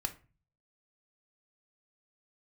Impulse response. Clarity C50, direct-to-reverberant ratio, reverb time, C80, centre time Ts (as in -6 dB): 15.0 dB, 6.5 dB, 0.35 s, 21.5 dB, 7 ms